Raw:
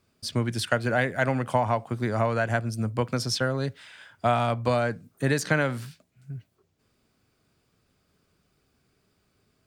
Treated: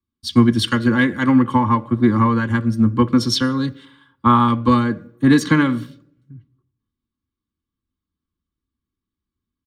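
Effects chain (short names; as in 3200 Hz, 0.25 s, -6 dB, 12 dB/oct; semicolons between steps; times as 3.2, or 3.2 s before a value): comb 3.6 ms, depth 62%; reverb RT60 1.1 s, pre-delay 3 ms, DRR 16.5 dB; in parallel at -11 dB: overloaded stage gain 12 dB; 3.85–4.48 on the sum: fifteen-band EQ 1000 Hz +7 dB, 2500 Hz -5 dB, 6300 Hz -9 dB; three-band expander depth 70%; gain +1 dB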